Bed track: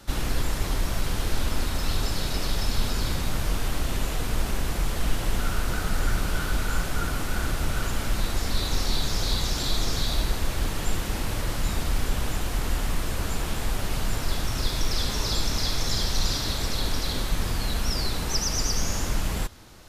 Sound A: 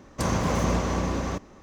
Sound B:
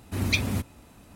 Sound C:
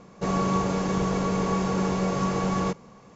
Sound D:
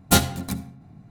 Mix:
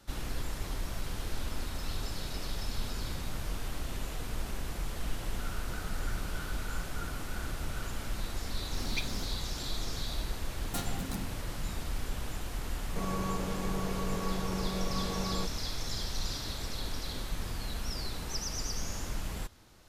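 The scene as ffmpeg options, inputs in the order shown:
-filter_complex "[0:a]volume=0.316[s0];[2:a]highpass=140[s1];[4:a]acompressor=threshold=0.0355:ratio=4:attack=2.7:release=80:knee=1:detection=rms[s2];[s1]atrim=end=1.15,asetpts=PTS-STARTPTS,volume=0.251,afade=t=in:d=0.004:c=hsin,afade=t=out:st=1.146:d=0.004:c=hsin,adelay=8640[s3];[s2]atrim=end=1.1,asetpts=PTS-STARTPTS,volume=0.562,afade=t=in:d=0.004:c=hsin,afade=t=out:st=1.096:d=0.004:c=hsin,adelay=10630[s4];[3:a]atrim=end=3.15,asetpts=PTS-STARTPTS,volume=0.299,afade=t=in:d=0.004:c=hsin,afade=t=out:st=3.146:d=0.004:c=hsin,adelay=12740[s5];[s0][s3][s4][s5]amix=inputs=4:normalize=0"

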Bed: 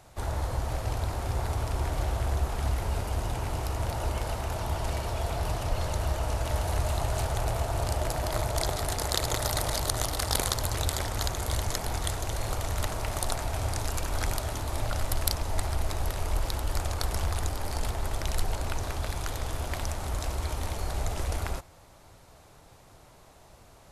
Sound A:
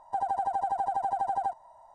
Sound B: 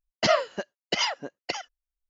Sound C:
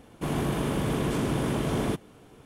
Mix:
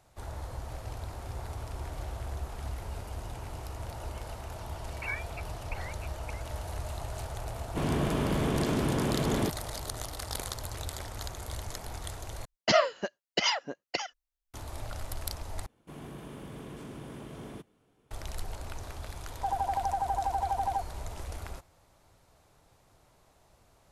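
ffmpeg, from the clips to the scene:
-filter_complex "[2:a]asplit=2[s0][s1];[3:a]asplit=2[s2][s3];[0:a]volume=0.355[s4];[s0]lowpass=f=2500:t=q:w=0.5098,lowpass=f=2500:t=q:w=0.6013,lowpass=f=2500:t=q:w=0.9,lowpass=f=2500:t=q:w=2.563,afreqshift=-2900[s5];[s2]acrossover=split=7400[s6][s7];[s7]acompressor=threshold=0.00158:ratio=4:attack=1:release=60[s8];[s6][s8]amix=inputs=2:normalize=0[s9];[s4]asplit=3[s10][s11][s12];[s10]atrim=end=12.454[s13];[s1]atrim=end=2.09,asetpts=PTS-STARTPTS,volume=0.841[s14];[s11]atrim=start=14.536:end=15.664[s15];[s3]atrim=end=2.45,asetpts=PTS-STARTPTS,volume=0.15[s16];[s12]atrim=start=18.106[s17];[s5]atrim=end=2.09,asetpts=PTS-STARTPTS,volume=0.188,afade=t=in:d=0.004:c=hsin,afade=t=out:st=2.086:d=0.004:c=hsin,adelay=4790[s18];[s9]atrim=end=2.45,asetpts=PTS-STARTPTS,volume=0.841,afade=t=in:d=0.004:c=hsin,afade=t=out:st=2.446:d=0.004:c=hsin,adelay=332514S[s19];[1:a]atrim=end=1.94,asetpts=PTS-STARTPTS,volume=0.841,afade=t=in:d=0.004:c=hsin,afade=t=out:st=1.936:d=0.004:c=hsin,adelay=19300[s20];[s13][s14]acrossfade=d=0.004:c1=hsin:c2=hsin[s21];[s21][s15]acrossfade=d=0.004:c1=hsin:c2=hsin[s22];[s22][s16]acrossfade=d=0.004:c1=hsin:c2=hsin[s23];[s23][s17]acrossfade=d=0.004:c1=hsin:c2=hsin[s24];[s24][s18][s19][s20]amix=inputs=4:normalize=0"

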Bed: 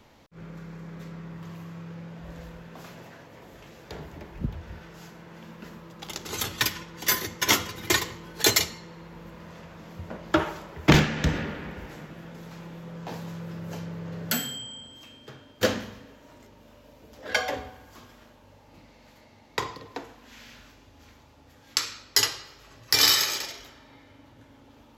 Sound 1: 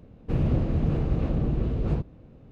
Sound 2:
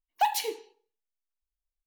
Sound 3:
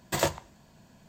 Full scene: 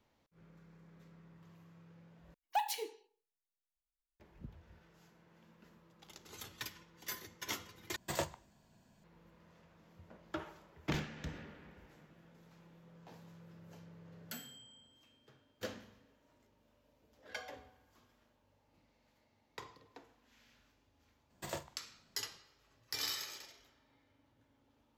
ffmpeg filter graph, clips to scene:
-filter_complex "[3:a]asplit=2[s0][s1];[0:a]volume=0.106[s2];[s1]asplit=2[s3][s4];[s4]adelay=49,volume=0.224[s5];[s3][s5]amix=inputs=2:normalize=0[s6];[s2]asplit=3[s7][s8][s9];[s7]atrim=end=2.344[s10];[2:a]atrim=end=1.86,asetpts=PTS-STARTPTS,volume=0.355[s11];[s8]atrim=start=4.196:end=7.964[s12];[s0]atrim=end=1.08,asetpts=PTS-STARTPTS,volume=0.299[s13];[s9]atrim=start=9.036[s14];[s6]atrim=end=1.08,asetpts=PTS-STARTPTS,volume=0.158,afade=t=in:d=0.004:c=hsin,afade=t=out:st=1.076:d=0.004:c=hsin,adelay=21300[s15];[s10][s11]acrossfade=d=0.004:c1=hsin:c2=hsin[s16];[s16][s12]acrossfade=d=0.004:c1=hsin:c2=hsin[s17];[s17][s13]acrossfade=d=0.004:c1=hsin:c2=hsin[s18];[s18][s14]acrossfade=d=0.004:c1=hsin:c2=hsin[s19];[s19][s15]amix=inputs=2:normalize=0"

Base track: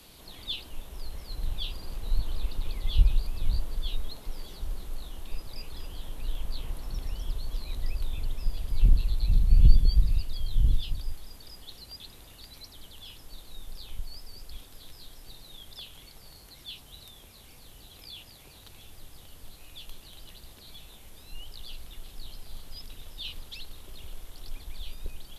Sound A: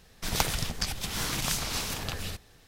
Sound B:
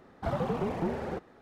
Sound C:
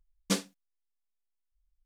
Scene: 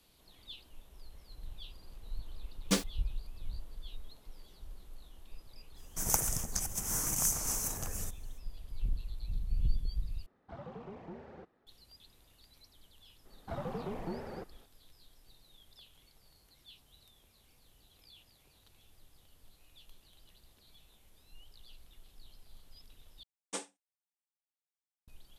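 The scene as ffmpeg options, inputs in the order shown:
-filter_complex "[3:a]asplit=2[s0][s1];[2:a]asplit=2[s2][s3];[0:a]volume=0.2[s4];[s0]acrusher=bits=6:mix=0:aa=0.000001[s5];[1:a]firequalizer=gain_entry='entry(930,0);entry(4000,-18);entry(6100,10)':delay=0.05:min_phase=1[s6];[s2]lowpass=5200[s7];[s1]highpass=f=290:w=0.5412,highpass=f=290:w=1.3066,equalizer=f=830:t=q:w=4:g=10,equalizer=f=4500:t=q:w=4:g=-7,equalizer=f=8500:t=q:w=4:g=10,lowpass=f=9800:w=0.5412,lowpass=f=9800:w=1.3066[s8];[s4]asplit=3[s9][s10][s11];[s9]atrim=end=10.264[s12];[s7]atrim=end=1.41,asetpts=PTS-STARTPTS,volume=0.158[s13];[s10]atrim=start=11.666:end=23.234[s14];[s8]atrim=end=1.85,asetpts=PTS-STARTPTS,volume=0.335[s15];[s11]atrim=start=25.076[s16];[s5]atrim=end=1.85,asetpts=PTS-STARTPTS,volume=0.944,afade=t=in:d=0.004:c=hsin,afade=t=out:st=1.846:d=0.004:c=hsin,adelay=2410[s17];[s6]atrim=end=2.67,asetpts=PTS-STARTPTS,volume=0.473,afade=t=in:d=0.05,afade=t=out:st=2.62:d=0.05,adelay=5740[s18];[s3]atrim=end=1.41,asetpts=PTS-STARTPTS,volume=0.376,afade=t=in:d=0.004:c=hsin,afade=t=out:st=1.406:d=0.004:c=hsin,adelay=13250[s19];[s12][s13]acrossfade=d=0.004:c1=hsin:c2=hsin[s20];[s20][s14]acrossfade=d=0.004:c1=hsin:c2=hsin[s21];[s21][s15]acrossfade=d=0.004:c1=hsin:c2=hsin[s22];[s22][s16]acrossfade=d=0.004:c1=hsin:c2=hsin[s23];[s23][s17][s18][s19]amix=inputs=4:normalize=0"

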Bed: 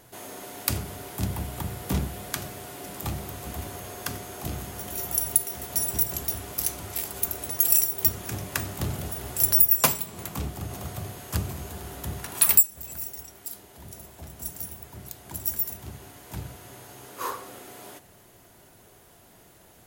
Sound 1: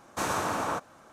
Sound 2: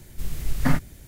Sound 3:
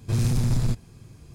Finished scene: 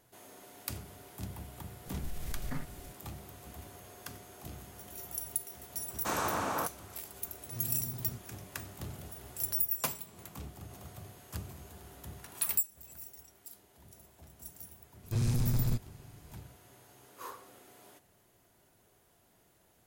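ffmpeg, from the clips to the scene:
-filter_complex "[3:a]asplit=2[s0][s1];[0:a]volume=0.224[s2];[2:a]acompressor=threshold=0.0398:ratio=6:attack=3.2:release=140:knee=1:detection=peak[s3];[s0]highpass=100[s4];[s3]atrim=end=1.07,asetpts=PTS-STARTPTS,volume=0.596,afade=t=in:d=0.004:c=hsin,afade=t=out:st=1.066:d=0.004:c=hsin,adelay=1860[s5];[1:a]atrim=end=1.12,asetpts=PTS-STARTPTS,volume=0.668,afade=t=in:d=0.004:c=hsin,afade=t=out:st=1.116:d=0.004:c=hsin,adelay=5880[s6];[s4]atrim=end=1.34,asetpts=PTS-STARTPTS,volume=0.126,afade=t=in:d=0.004:c=hsin,afade=t=out:st=1.336:d=0.004:c=hsin,adelay=7430[s7];[s1]atrim=end=1.34,asetpts=PTS-STARTPTS,volume=0.447,afade=t=in:d=0.004:c=hsin,afade=t=out:st=1.336:d=0.004:c=hsin,adelay=15030[s8];[s2][s5][s6][s7][s8]amix=inputs=5:normalize=0"

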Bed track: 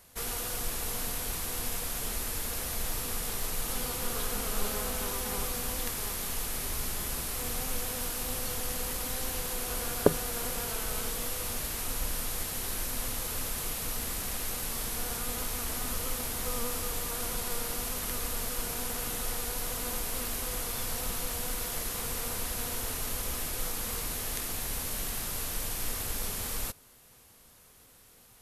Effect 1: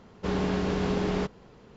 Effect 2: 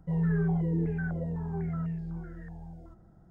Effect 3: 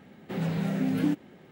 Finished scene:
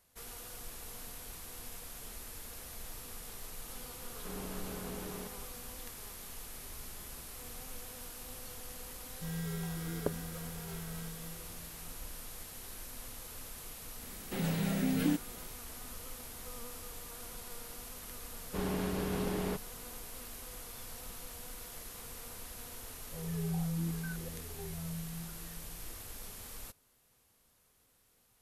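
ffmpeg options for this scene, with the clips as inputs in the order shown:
-filter_complex "[1:a]asplit=2[s0][s1];[2:a]asplit=2[s2][s3];[0:a]volume=0.237[s4];[s2]acrusher=samples=25:mix=1:aa=0.000001[s5];[3:a]highshelf=f=3300:g=12[s6];[s3]asplit=2[s7][s8];[s8]afreqshift=0.7[s9];[s7][s9]amix=inputs=2:normalize=1[s10];[s0]atrim=end=1.76,asetpts=PTS-STARTPTS,volume=0.15,afade=t=in:d=0.004:c=hsin,afade=t=out:st=1.756:d=0.004:c=hsin,adelay=176841S[s11];[s5]atrim=end=3.3,asetpts=PTS-STARTPTS,volume=0.251,afade=t=in:d=0.004:c=hsin,afade=t=out:st=3.296:d=0.004:c=hsin,adelay=403074S[s12];[s6]atrim=end=1.51,asetpts=PTS-STARTPTS,volume=0.596,afade=t=in:d=0.004:c=hsin,afade=t=out:st=1.506:d=0.004:c=hsin,adelay=14020[s13];[s1]atrim=end=1.76,asetpts=PTS-STARTPTS,volume=0.422,afade=t=in:d=0.004:c=hsin,afade=t=out:st=1.756:d=0.004:c=hsin,adelay=18300[s14];[s10]atrim=end=3.3,asetpts=PTS-STARTPTS,volume=0.501,afade=t=in:d=0.004:c=hsin,afade=t=out:st=3.296:d=0.004:c=hsin,adelay=23050[s15];[s4][s11][s12][s13][s14][s15]amix=inputs=6:normalize=0"

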